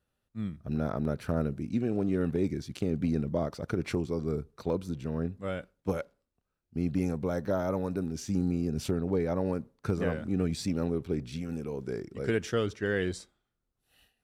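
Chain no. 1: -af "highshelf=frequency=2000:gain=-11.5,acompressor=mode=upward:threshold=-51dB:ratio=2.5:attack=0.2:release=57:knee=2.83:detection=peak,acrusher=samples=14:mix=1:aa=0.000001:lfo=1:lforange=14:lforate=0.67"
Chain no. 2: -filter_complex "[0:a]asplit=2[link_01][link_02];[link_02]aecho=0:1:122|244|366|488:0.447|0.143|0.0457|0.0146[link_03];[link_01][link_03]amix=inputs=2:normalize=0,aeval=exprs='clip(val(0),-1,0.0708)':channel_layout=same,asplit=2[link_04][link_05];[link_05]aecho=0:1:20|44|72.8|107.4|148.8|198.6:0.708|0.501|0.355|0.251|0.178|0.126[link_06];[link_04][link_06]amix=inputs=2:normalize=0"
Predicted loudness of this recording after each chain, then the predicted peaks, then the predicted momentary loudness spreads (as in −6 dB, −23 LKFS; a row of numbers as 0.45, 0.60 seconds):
−32.5, −29.0 LKFS; −16.5, −14.0 dBFS; 7, 7 LU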